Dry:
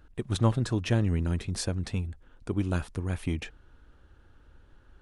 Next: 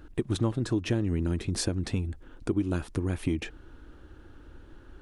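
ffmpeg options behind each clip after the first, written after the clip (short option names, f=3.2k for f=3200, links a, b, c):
-af "equalizer=f=320:t=o:w=0.66:g=9,acompressor=threshold=-33dB:ratio=3,volume=6dB"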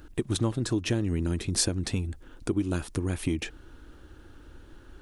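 -af "highshelf=f=3.9k:g=9"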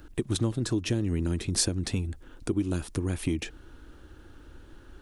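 -filter_complex "[0:a]acrossover=split=480|3000[a][b][c];[b]acompressor=threshold=-39dB:ratio=6[d];[a][d][c]amix=inputs=3:normalize=0"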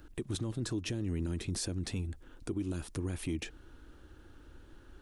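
-af "alimiter=limit=-22dB:level=0:latency=1:release=11,volume=-5dB"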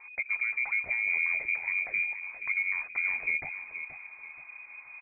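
-filter_complex "[0:a]asplit=2[a][b];[b]aecho=0:1:477|954|1431|1908:0.299|0.107|0.0387|0.0139[c];[a][c]amix=inputs=2:normalize=0,lowpass=f=2.1k:t=q:w=0.5098,lowpass=f=2.1k:t=q:w=0.6013,lowpass=f=2.1k:t=q:w=0.9,lowpass=f=2.1k:t=q:w=2.563,afreqshift=-2500,volume=5dB"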